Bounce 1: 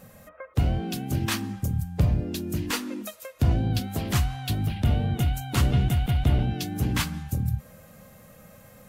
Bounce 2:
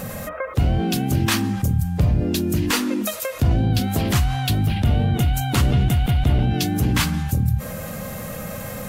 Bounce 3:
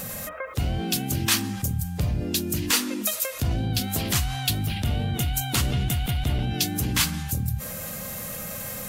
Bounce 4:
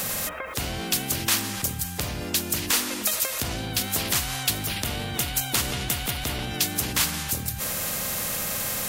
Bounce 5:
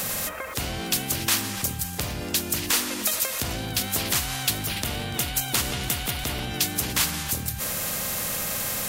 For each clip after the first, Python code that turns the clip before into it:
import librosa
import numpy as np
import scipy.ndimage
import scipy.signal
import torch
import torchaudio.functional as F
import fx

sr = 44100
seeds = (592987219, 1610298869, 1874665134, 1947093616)

y1 = fx.env_flatten(x, sr, amount_pct=50)
y1 = y1 * 10.0 ** (2.5 / 20.0)
y2 = fx.high_shelf(y1, sr, hz=2400.0, db=11.5)
y2 = y2 * 10.0 ** (-7.5 / 20.0)
y3 = fx.spectral_comp(y2, sr, ratio=2.0)
y4 = y3 + 10.0 ** (-18.0 / 20.0) * np.pad(y3, (int(290 * sr / 1000.0), 0))[:len(y3)]